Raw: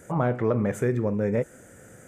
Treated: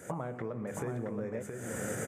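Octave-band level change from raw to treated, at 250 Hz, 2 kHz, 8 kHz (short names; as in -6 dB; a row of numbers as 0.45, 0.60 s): -11.0, -6.0, +4.0 dB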